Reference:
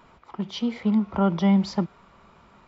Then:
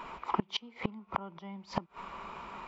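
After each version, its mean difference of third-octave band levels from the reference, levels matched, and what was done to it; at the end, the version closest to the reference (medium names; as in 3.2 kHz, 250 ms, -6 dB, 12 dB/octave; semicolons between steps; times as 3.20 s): 10.0 dB: fifteen-band graphic EQ 100 Hz -12 dB, 400 Hz +3 dB, 1 kHz +9 dB, 2.5 kHz +8 dB; inverted gate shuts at -20 dBFS, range -30 dB; trim +4.5 dB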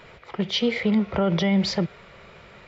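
5.0 dB: ten-band graphic EQ 125 Hz +6 dB, 250 Hz -7 dB, 500 Hz +10 dB, 1 kHz -8 dB, 2 kHz +10 dB, 4 kHz +5 dB; peak limiter -18 dBFS, peak gain reduction 8 dB; trim +4.5 dB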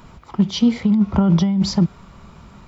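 3.0 dB: tone controls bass +12 dB, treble +9 dB; compressor with a negative ratio -16 dBFS, ratio -1; trim +2 dB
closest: third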